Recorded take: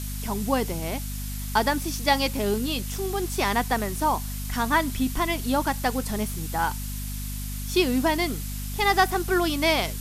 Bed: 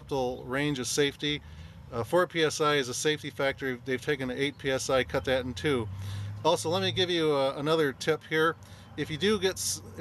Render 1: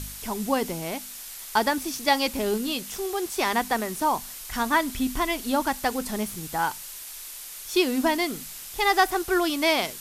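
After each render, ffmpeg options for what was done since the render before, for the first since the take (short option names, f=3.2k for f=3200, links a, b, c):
-af "bandreject=f=50:t=h:w=4,bandreject=f=100:t=h:w=4,bandreject=f=150:t=h:w=4,bandreject=f=200:t=h:w=4,bandreject=f=250:t=h:w=4"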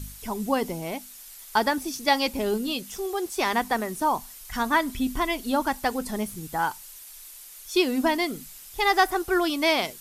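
-af "afftdn=nr=8:nf=-40"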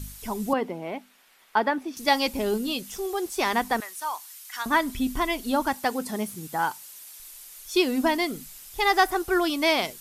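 -filter_complex "[0:a]asettb=1/sr,asplit=3[a][b][c];[a]atrim=end=0.534[d];[b]atrim=start=0.53:end=1.97,asetpts=PTS-STARTPTS,afade=t=in:d=0.004:c=qsin,afade=t=out:st=1.436:d=0.004:c=qsin,acrossover=split=170 3100:gain=0.0631 1 0.1[e][f][g];[e][f][g]amix=inputs=3:normalize=0[h];[c]atrim=start=1.966[i];[d][h]acrossfade=d=0.004:c1=hsin:c2=qsin[j];[j][i]acrossfade=d=0.004:c1=qsin:c2=hsin,asettb=1/sr,asplit=3[k][l][m];[k]atrim=end=3.804[n];[l]atrim=start=3.8:end=4.66,asetpts=PTS-STARTPTS,afade=t=in:d=0.004:c=qsin,afade=t=out:st=0.856:d=0.004:c=qsin,highpass=1.3k[o];[m]atrim=start=4.656[p];[n][o]acrossfade=d=0.004:c1=hsin:c2=qsin[q];[q][p]acrossfade=d=0.004:c1=qsin:c2=hsin,asettb=1/sr,asplit=3[r][s][t];[r]atrim=end=5.734[u];[s]atrim=start=5.73:end=7.2,asetpts=PTS-STARTPTS,afade=t=in:d=0.004:c=qsin,afade=t=out:st=1.466:d=0.004:c=qsin,highpass=130[v];[t]atrim=start=7.196[w];[u][v]acrossfade=d=0.004:c1=hsin:c2=qsin[x];[x][w]acrossfade=d=0.004:c1=qsin:c2=hsin"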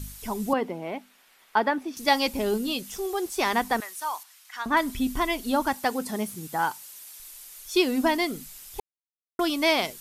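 -filter_complex "[0:a]asettb=1/sr,asplit=3[a][b][c];[a]atrim=end=4.234[d];[b]atrim=start=4.23:end=4.77,asetpts=PTS-STARTPTS,afade=t=in:d=0.004:c=qsin,afade=t=out:st=0.536:d=0.004:c=qsin,lowpass=f=2.7k:p=1[e];[c]atrim=start=4.766[f];[d][e]acrossfade=d=0.004:c1=hsin:c2=qsin[g];[g][f]acrossfade=d=0.004:c1=qsin:c2=hsin,asplit=3[h][i][j];[h]atrim=end=8.8,asetpts=PTS-STARTPTS,afade=t=out:st=8.796:d=0.004:c=hsin[k];[i]atrim=start=8.8:end=9.39,asetpts=PTS-STARTPTS,volume=0[l];[j]atrim=start=9.39,asetpts=PTS-STARTPTS,afade=t=in:d=0.004:c=hsin[m];[k][l][m]concat=n=3:v=0:a=1"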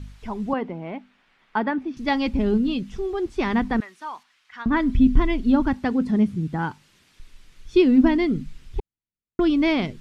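-af "lowpass=2.8k,asubboost=boost=8.5:cutoff=240"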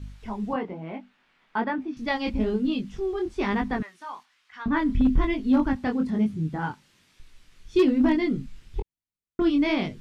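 -af "flanger=delay=19:depth=5.5:speed=1.1,asoftclip=type=hard:threshold=-13.5dB"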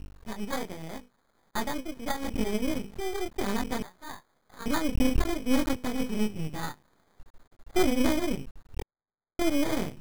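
-af "acrusher=samples=16:mix=1:aa=0.000001,aeval=exprs='max(val(0),0)':c=same"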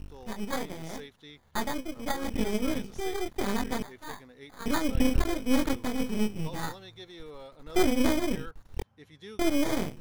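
-filter_complex "[1:a]volume=-19.5dB[a];[0:a][a]amix=inputs=2:normalize=0"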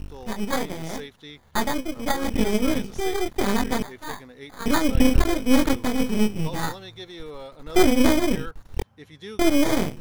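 -af "volume=7dB"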